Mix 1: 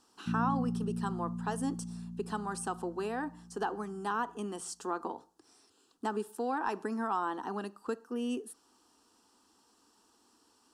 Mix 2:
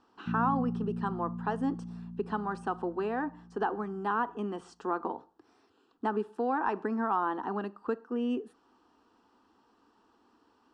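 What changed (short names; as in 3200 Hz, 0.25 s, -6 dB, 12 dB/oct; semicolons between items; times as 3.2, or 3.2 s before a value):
speech +3.5 dB; master: add LPF 2300 Hz 12 dB/oct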